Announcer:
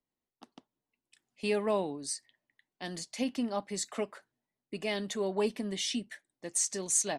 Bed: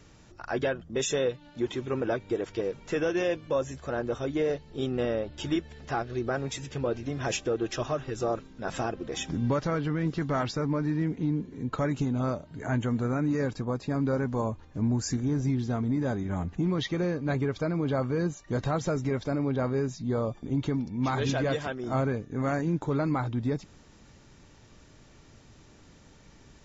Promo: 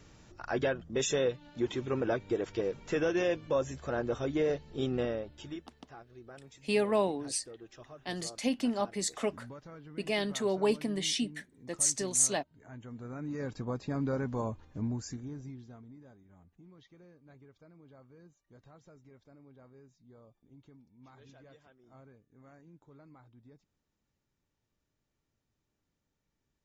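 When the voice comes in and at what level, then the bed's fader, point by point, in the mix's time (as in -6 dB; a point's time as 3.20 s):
5.25 s, +2.0 dB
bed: 4.95 s -2 dB
5.86 s -20.5 dB
12.72 s -20.5 dB
13.65 s -5 dB
14.72 s -5 dB
16.20 s -29 dB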